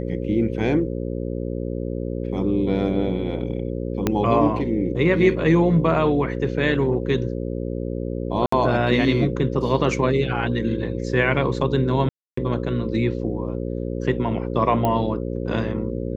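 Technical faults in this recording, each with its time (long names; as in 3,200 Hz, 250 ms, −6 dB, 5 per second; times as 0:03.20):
mains buzz 60 Hz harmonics 9 −27 dBFS
0:04.07: click −6 dBFS
0:08.46–0:08.52: drop-out 64 ms
0:12.09–0:12.37: drop-out 284 ms
0:14.85: click −10 dBFS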